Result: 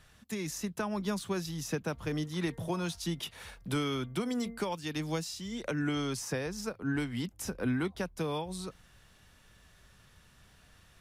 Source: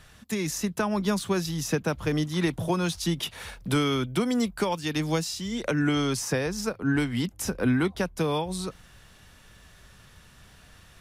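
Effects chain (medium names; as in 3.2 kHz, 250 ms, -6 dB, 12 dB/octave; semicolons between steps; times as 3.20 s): 1.92–4.59 s: de-hum 230.6 Hz, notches 9; trim -7.5 dB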